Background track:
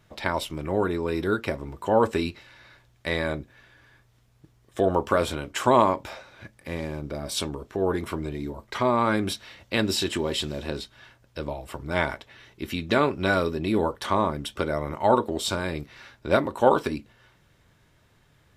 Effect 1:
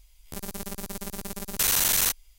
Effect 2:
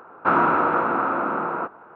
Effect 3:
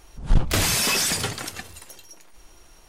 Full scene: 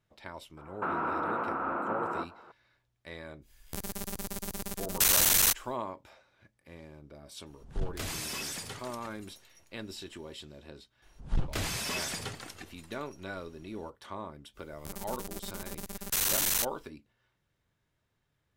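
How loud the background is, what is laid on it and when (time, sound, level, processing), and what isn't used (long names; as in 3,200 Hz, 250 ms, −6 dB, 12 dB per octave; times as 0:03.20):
background track −17.5 dB
0:00.57: mix in 2 −7 dB + brickwall limiter −17 dBFS
0:03.41: mix in 1 −3 dB, fades 0.10 s + harmonic and percussive parts rebalanced percussive +4 dB
0:07.46: mix in 3 −15.5 dB
0:11.02: mix in 3 −11 dB + high-shelf EQ 6,100 Hz −5.5 dB
0:14.53: mix in 1 −5.5 dB, fades 0.05 s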